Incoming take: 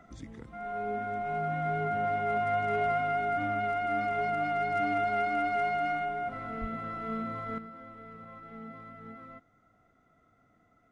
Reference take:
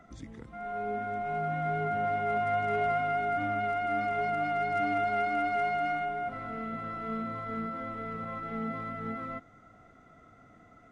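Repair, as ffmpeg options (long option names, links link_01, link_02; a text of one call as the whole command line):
ffmpeg -i in.wav -filter_complex "[0:a]asplit=3[link_01][link_02][link_03];[link_01]afade=type=out:start_time=6.6:duration=0.02[link_04];[link_02]highpass=frequency=140:width=0.5412,highpass=frequency=140:width=1.3066,afade=type=in:start_time=6.6:duration=0.02,afade=type=out:start_time=6.72:duration=0.02[link_05];[link_03]afade=type=in:start_time=6.72:duration=0.02[link_06];[link_04][link_05][link_06]amix=inputs=3:normalize=0,asetnsamples=nb_out_samples=441:pad=0,asendcmd='7.58 volume volume 10dB',volume=0dB" out.wav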